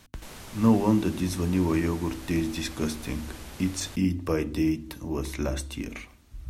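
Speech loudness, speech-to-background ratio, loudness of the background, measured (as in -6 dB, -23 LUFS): -27.5 LUFS, 16.5 dB, -44.0 LUFS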